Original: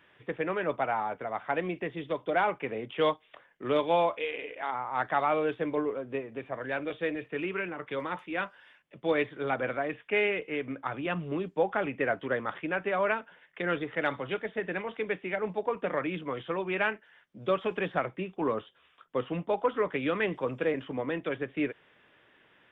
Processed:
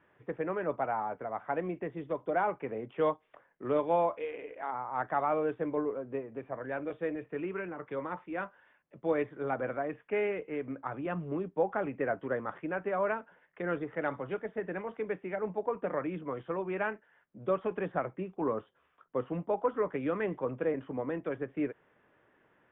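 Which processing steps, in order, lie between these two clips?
low-pass filter 1,400 Hz 12 dB per octave
level −2 dB

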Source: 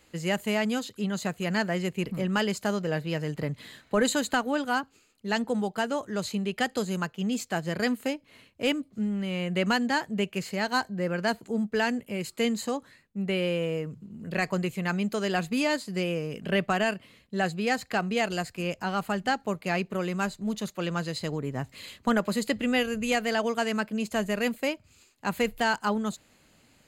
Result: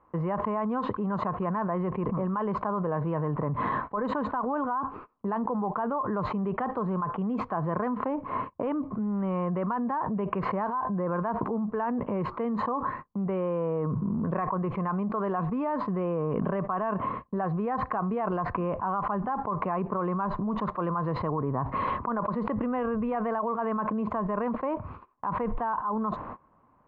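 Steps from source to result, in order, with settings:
noise gate −55 dBFS, range −25 dB
transistor ladder low-pass 1,100 Hz, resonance 85%
envelope flattener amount 100%
level −6 dB

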